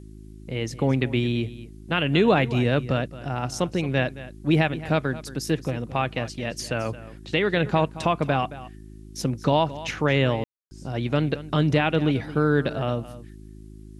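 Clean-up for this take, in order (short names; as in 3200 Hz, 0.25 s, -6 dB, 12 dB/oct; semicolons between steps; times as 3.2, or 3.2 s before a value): de-hum 52.7 Hz, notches 7; room tone fill 10.44–10.71; expander -35 dBFS, range -21 dB; inverse comb 0.221 s -16 dB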